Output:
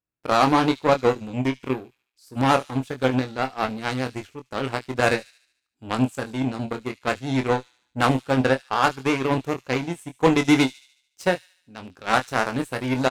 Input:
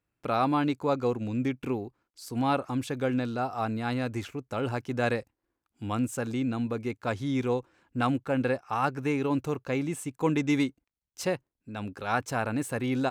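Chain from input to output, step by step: Chebyshev shaper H 7 -18 dB, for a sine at -13 dBFS; vibrato 12 Hz 43 cents; doubling 23 ms -7 dB; feedback echo behind a high-pass 73 ms, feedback 52%, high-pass 4.1 kHz, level -12.5 dB; trim +8 dB

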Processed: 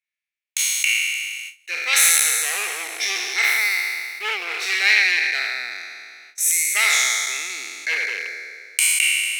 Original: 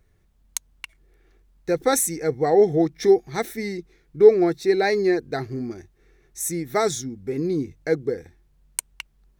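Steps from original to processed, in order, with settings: spectral sustain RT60 2.30 s; gate with hold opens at -30 dBFS; one-sided clip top -15 dBFS; resonant high-pass 2.4 kHz, resonance Q 4.4; gain riding within 4 dB 2 s; trim +2.5 dB

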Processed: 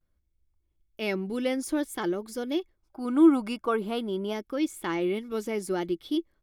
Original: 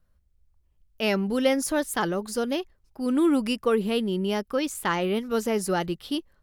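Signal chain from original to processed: vibrato 0.53 Hz 56 cents; small resonant body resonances 330/2200/3400 Hz, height 13 dB, ringing for 50 ms; time-frequency box 2.79–4.33 s, 580–1600 Hz +9 dB; trim -8 dB

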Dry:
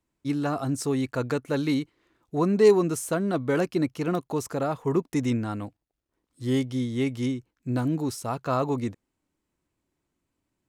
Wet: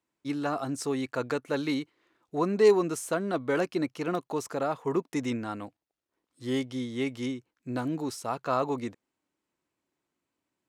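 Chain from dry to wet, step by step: high-pass 380 Hz 6 dB/octave; treble shelf 8.7 kHz -8 dB

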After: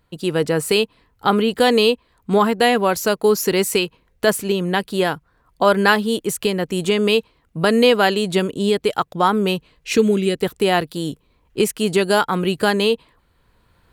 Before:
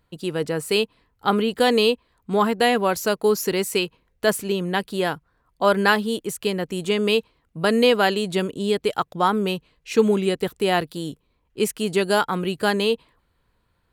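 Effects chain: recorder AGC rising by 8.7 dB/s; 9.95–10.38 s: peaking EQ 920 Hz -11.5 dB 0.86 oct; trim +3 dB

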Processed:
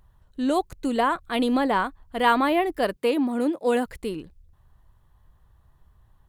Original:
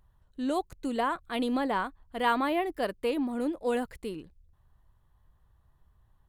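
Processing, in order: 2.96–3.86 s: high-pass 140 Hz 24 dB/octave; trim +6.5 dB

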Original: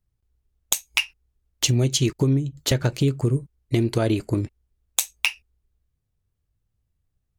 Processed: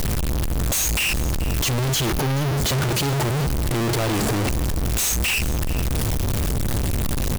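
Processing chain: one-bit comparator; 2.05–2.58 s: peaking EQ 7.8 kHz -8 dB 0.34 oct; delay 430 ms -16.5 dB; trim +4.5 dB

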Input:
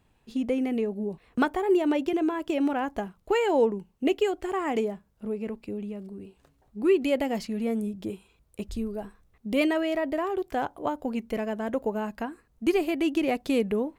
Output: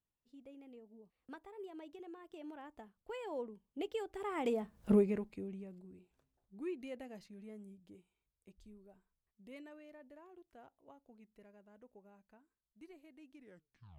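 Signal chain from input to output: tape stop on the ending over 0.82 s; Doppler pass-by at 4.88 s, 22 m/s, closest 1.2 m; trim +10 dB

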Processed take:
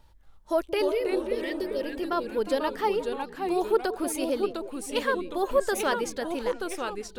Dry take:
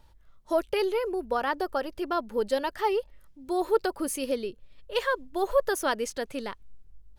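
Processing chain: spectral replace 0.85–1.83 s, 600–1800 Hz after; repeats whose band climbs or falls 178 ms, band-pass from 310 Hz, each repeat 1.4 oct, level -10.5 dB; ever faster or slower copies 233 ms, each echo -2 st, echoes 2, each echo -6 dB

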